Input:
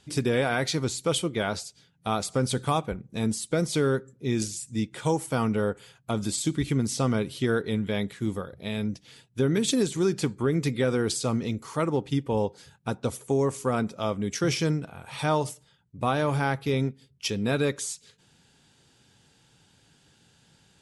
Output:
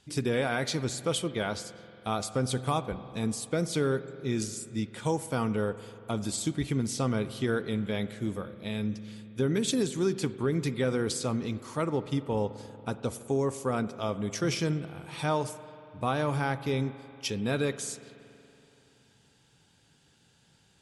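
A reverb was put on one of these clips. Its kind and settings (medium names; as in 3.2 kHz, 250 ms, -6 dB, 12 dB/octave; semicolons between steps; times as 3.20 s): spring tank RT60 3.1 s, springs 47 ms, chirp 70 ms, DRR 13.5 dB; trim -3.5 dB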